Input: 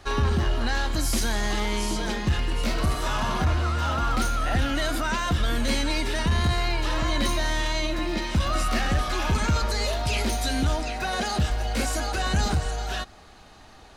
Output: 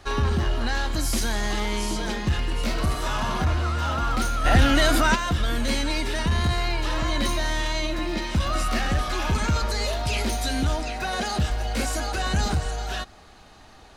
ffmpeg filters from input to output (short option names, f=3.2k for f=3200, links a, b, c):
-filter_complex "[0:a]asplit=3[a][b][c];[a]afade=t=out:st=4.44:d=0.02[d];[b]acontrast=83,afade=t=in:st=4.44:d=0.02,afade=t=out:st=5.14:d=0.02[e];[c]afade=t=in:st=5.14:d=0.02[f];[d][e][f]amix=inputs=3:normalize=0"